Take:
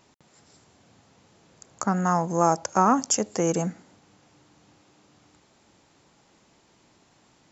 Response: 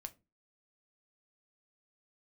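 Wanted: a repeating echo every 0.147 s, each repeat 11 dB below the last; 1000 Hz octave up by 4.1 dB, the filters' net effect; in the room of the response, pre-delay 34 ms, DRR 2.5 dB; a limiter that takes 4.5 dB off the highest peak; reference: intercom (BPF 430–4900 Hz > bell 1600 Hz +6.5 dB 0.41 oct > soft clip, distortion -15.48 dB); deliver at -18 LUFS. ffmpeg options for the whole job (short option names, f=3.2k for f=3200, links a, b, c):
-filter_complex "[0:a]equalizer=f=1k:t=o:g=4.5,alimiter=limit=-8.5dB:level=0:latency=1,aecho=1:1:147|294|441:0.282|0.0789|0.0221,asplit=2[a][b];[1:a]atrim=start_sample=2205,adelay=34[c];[b][c]afir=irnorm=-1:irlink=0,volume=2dB[d];[a][d]amix=inputs=2:normalize=0,highpass=430,lowpass=4.9k,equalizer=f=1.6k:t=o:w=0.41:g=6.5,asoftclip=threshold=-11.5dB,volume=6dB"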